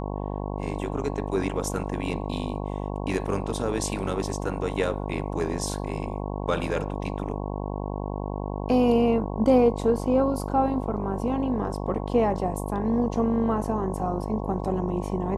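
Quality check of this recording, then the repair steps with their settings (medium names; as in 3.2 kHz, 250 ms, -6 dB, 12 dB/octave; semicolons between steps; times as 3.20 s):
buzz 50 Hz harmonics 22 -31 dBFS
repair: de-hum 50 Hz, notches 22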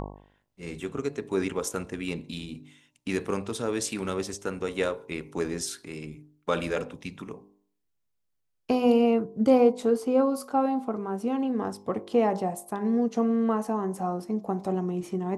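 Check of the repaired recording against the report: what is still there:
nothing left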